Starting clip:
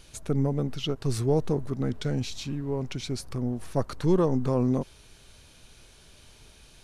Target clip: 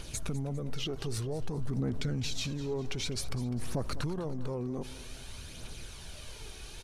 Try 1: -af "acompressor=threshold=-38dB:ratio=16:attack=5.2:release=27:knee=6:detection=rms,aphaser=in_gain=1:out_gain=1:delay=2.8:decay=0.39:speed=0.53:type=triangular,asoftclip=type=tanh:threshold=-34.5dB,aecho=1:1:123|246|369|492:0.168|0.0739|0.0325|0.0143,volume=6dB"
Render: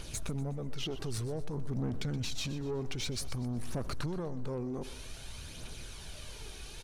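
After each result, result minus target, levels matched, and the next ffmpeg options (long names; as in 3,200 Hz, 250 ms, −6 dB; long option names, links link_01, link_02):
soft clipping: distortion +15 dB; echo 79 ms early
-af "acompressor=threshold=-38dB:ratio=16:attack=5.2:release=27:knee=6:detection=rms,aphaser=in_gain=1:out_gain=1:delay=2.8:decay=0.39:speed=0.53:type=triangular,asoftclip=type=tanh:threshold=-25dB,aecho=1:1:123|246|369|492:0.168|0.0739|0.0325|0.0143,volume=6dB"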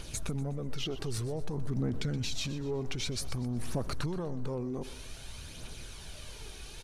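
echo 79 ms early
-af "acompressor=threshold=-38dB:ratio=16:attack=5.2:release=27:knee=6:detection=rms,aphaser=in_gain=1:out_gain=1:delay=2.8:decay=0.39:speed=0.53:type=triangular,asoftclip=type=tanh:threshold=-25dB,aecho=1:1:202|404|606|808:0.168|0.0739|0.0325|0.0143,volume=6dB"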